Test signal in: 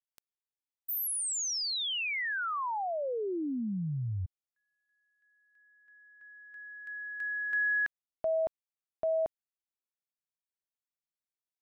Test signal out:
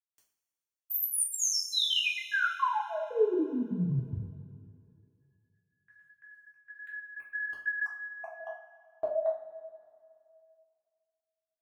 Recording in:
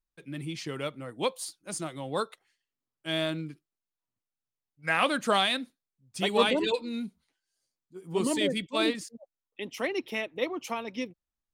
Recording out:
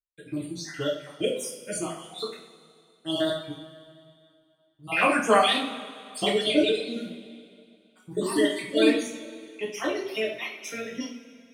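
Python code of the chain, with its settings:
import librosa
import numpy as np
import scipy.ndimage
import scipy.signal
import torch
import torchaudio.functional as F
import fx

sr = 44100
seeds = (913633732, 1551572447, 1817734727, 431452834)

y = fx.spec_dropout(x, sr, seeds[0], share_pct=54)
y = fx.gate_hold(y, sr, open_db=-56.0, close_db=-61.0, hold_ms=15.0, range_db=-18, attack_ms=0.81, release_ms=102.0)
y = fx.rev_double_slope(y, sr, seeds[1], early_s=0.41, late_s=2.4, knee_db=-18, drr_db=-5.5)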